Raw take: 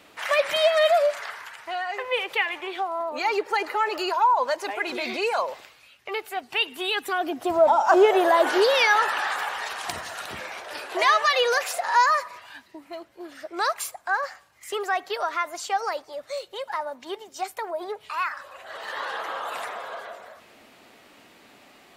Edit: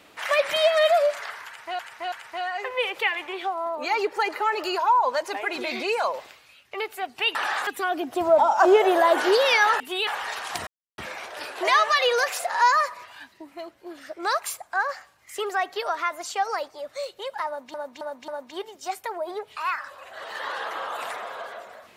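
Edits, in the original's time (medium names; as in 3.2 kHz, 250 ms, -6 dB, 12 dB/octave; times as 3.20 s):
1.46–1.79 s: loop, 3 plays
6.69–6.96 s: swap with 9.09–9.41 s
10.01–10.32 s: mute
16.81–17.08 s: loop, 4 plays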